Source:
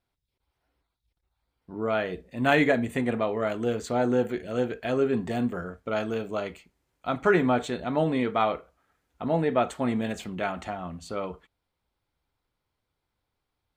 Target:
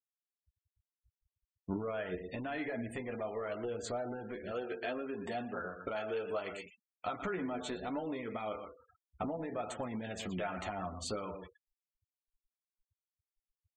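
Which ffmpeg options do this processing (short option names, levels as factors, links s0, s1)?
-filter_complex "[0:a]alimiter=limit=0.119:level=0:latency=1:release=67,asettb=1/sr,asplit=3[s0][s1][s2];[s0]atrim=end=4.514[s3];[s1]atrim=start=4.51:end=7.22,asetpts=PTS-STARTPTS,afade=t=in:d=0.004:c=qsin,afade=t=out:st=2.706:d=0.004:c=qsin,lowshelf=f=220:g=-11[s4];[s2]atrim=start=7.216[s5];[s3][s4]acrossfade=d=0.004:c1=hsin:c2=qsin[s6];[s6][s5]acrossfade=d=0.004:c1=qsin:c2=hsin,aecho=1:1:119:0.237,acompressor=threshold=0.00891:ratio=16,asoftclip=type=tanh:threshold=0.0224,adynamicequalizer=threshold=0.001:dfrequency=140:dqfactor=0.88:tfrequency=140:tqfactor=0.88:attack=5:release=100:ratio=0.375:range=2.5:mode=cutabove:tftype=bell,flanger=delay=9.2:depth=2.2:regen=25:speed=0.72:shape=triangular,bandreject=f=168:t=h:w=4,bandreject=f=336:t=h:w=4,bandreject=f=504:t=h:w=4,bandreject=f=672:t=h:w=4,bandreject=f=840:t=h:w=4,bandreject=f=1008:t=h:w=4,afftfilt=real='re*gte(hypot(re,im),0.000891)':imag='im*gte(hypot(re,im),0.000891)':win_size=1024:overlap=0.75,volume=3.76"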